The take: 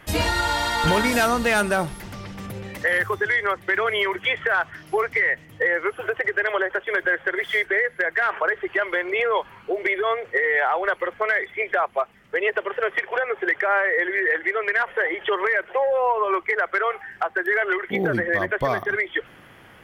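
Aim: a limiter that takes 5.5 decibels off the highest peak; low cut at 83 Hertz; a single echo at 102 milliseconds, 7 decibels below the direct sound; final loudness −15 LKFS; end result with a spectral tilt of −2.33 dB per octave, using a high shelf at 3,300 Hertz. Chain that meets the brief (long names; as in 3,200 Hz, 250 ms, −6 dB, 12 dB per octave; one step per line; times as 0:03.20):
high-pass filter 83 Hz
high-shelf EQ 3,300 Hz −6 dB
brickwall limiter −15.5 dBFS
single-tap delay 102 ms −7 dB
level +9 dB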